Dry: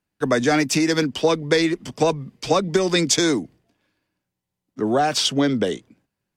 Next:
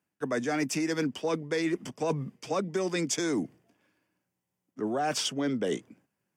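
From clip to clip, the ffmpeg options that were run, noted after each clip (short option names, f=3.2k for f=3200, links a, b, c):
-af "highpass=130,equalizer=f=4k:w=3.3:g=-10.5,areverse,acompressor=threshold=-26dB:ratio=10,areverse"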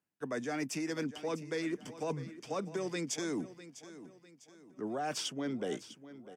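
-af "aecho=1:1:651|1302|1953|2604:0.178|0.0729|0.0299|0.0123,volume=-7dB"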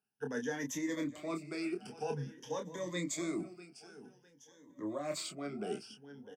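-filter_complex "[0:a]afftfilt=real='re*pow(10,16/40*sin(2*PI*(1.1*log(max(b,1)*sr/1024/100)/log(2)-(0.51)*(pts-256)/sr)))':imag='im*pow(10,16/40*sin(2*PI*(1.1*log(max(b,1)*sr/1024/100)/log(2)-(0.51)*(pts-256)/sr)))':win_size=1024:overlap=0.75,asplit=2[a][b];[b]adelay=28,volume=-5.5dB[c];[a][c]amix=inputs=2:normalize=0,volume=-5.5dB"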